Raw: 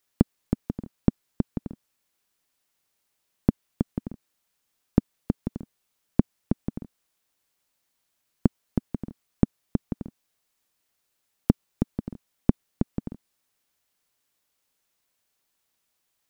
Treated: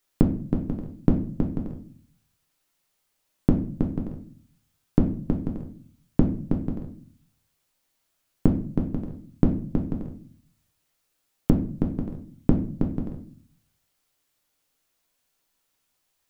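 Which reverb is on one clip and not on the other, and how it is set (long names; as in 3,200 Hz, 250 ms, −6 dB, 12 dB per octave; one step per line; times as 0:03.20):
rectangular room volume 45 cubic metres, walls mixed, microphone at 0.51 metres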